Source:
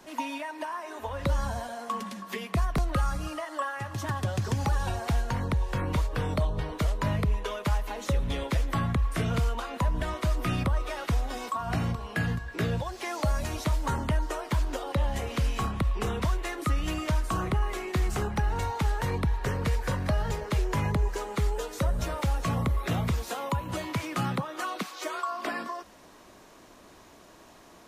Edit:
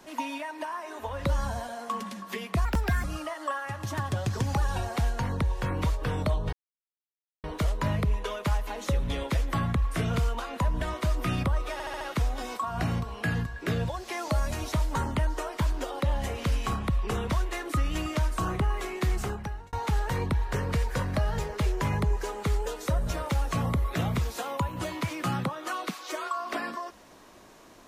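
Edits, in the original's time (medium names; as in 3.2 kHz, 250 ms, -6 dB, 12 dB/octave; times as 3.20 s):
2.65–3.15 s: speed 129%
6.64 s: insert silence 0.91 s
10.93 s: stutter 0.07 s, 5 plays
18.05–18.65 s: fade out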